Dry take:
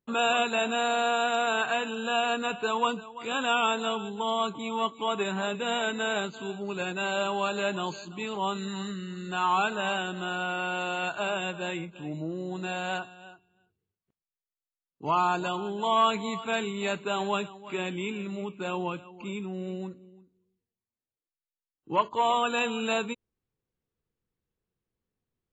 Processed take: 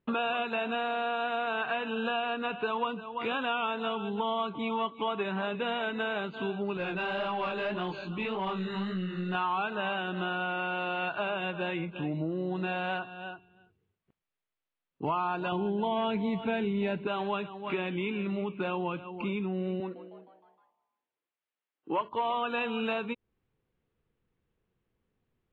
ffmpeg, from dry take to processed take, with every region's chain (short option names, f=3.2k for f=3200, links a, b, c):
-filter_complex "[0:a]asettb=1/sr,asplit=3[a][b][c];[a]atrim=end=6.774[d];[b]atrim=start=6.77:end=9.35,asetpts=PTS-STARTPTS,afade=t=in:d=0.004:c=qsin,afade=t=out:st=2.576:d=0.004:c=qsin,flanger=delay=16:depth=7:speed=1.8,aeval=exprs='(tanh(25.1*val(0)+0.15)-tanh(0.15))/25.1':c=same[e];[c]atrim=start=9.346[f];[d][e]acrossfade=d=0.004:c1=hsin:c2=qsin[g];[g][f]acrossfade=d=0.004:c1=qsin:c2=hsin,asettb=1/sr,asplit=3[h][i][j];[h]atrim=end=15.524[k];[i]atrim=start=15.52:end=17.07,asetpts=PTS-STARTPTS,afade=t=in:d=0.004:c=qsin,afade=t=out:st=1.546:d=0.004:c=qsin,asuperstop=centerf=1200:order=4:qfactor=3.9,lowshelf=f=450:g=11[l];[j]atrim=start=17.066[m];[k][l]acrossfade=d=0.004:c1=hsin:c2=qsin[n];[n][m]acrossfade=d=0.004:c1=qsin:c2=hsin,asettb=1/sr,asplit=3[o][p][q];[o]atrim=end=19.804[r];[p]atrim=start=19.8:end=22.01,asetpts=PTS-STARTPTS,afade=t=in:d=0.004:c=qsin,afade=t=out:st=2.206:d=0.004:c=qsin,highpass=300,lowpass=4.6k,asplit=6[s][t][u][v][w][x];[t]adelay=155,afreqshift=130,volume=-16.5dB[y];[u]adelay=310,afreqshift=260,volume=-21.5dB[z];[v]adelay=465,afreqshift=390,volume=-26.6dB[aa];[w]adelay=620,afreqshift=520,volume=-31.6dB[ab];[x]adelay=775,afreqshift=650,volume=-36.6dB[ac];[s][y][z][aa][ab][ac]amix=inputs=6:normalize=0,atrim=end_sample=97461[ad];[q]atrim=start=22.006[ae];[r][ad]acrossfade=d=0.004:c1=hsin:c2=qsin[af];[af][ae]acrossfade=d=0.004:c1=qsin:c2=hsin,lowpass=f=3.3k:w=0.5412,lowpass=f=3.3k:w=1.3066,acompressor=threshold=-38dB:ratio=4,volume=8dB"